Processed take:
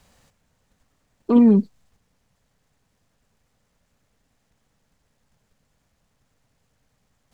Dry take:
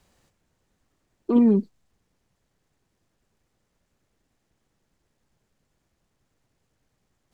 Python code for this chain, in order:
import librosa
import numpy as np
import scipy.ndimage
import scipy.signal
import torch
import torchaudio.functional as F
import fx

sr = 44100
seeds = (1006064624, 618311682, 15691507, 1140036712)

p1 = fx.peak_eq(x, sr, hz=350.0, db=-11.5, octaves=0.28)
p2 = fx.level_steps(p1, sr, step_db=14)
p3 = p1 + (p2 * 10.0 ** (-1.5 / 20.0))
y = p3 * 10.0 ** (3.0 / 20.0)